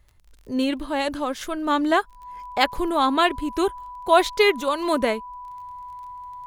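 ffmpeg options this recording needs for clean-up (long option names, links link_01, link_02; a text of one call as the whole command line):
ffmpeg -i in.wav -af "adeclick=threshold=4,bandreject=frequency=990:width=30" out.wav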